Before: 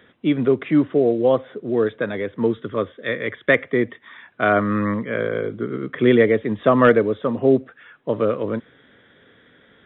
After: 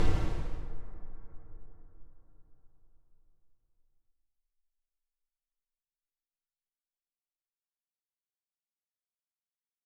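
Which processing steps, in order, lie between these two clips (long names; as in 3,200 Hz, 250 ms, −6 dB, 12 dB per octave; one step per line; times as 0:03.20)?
comb filter 6.6 ms, depth 64%
comparator with hysteresis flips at −19.5 dBFS
extreme stretch with random phases 42×, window 0.10 s, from 0:03.87
high-frequency loss of the air 60 metres
dense smooth reverb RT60 4.6 s, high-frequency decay 0.35×, pre-delay 0 ms, DRR 11 dB
level +6.5 dB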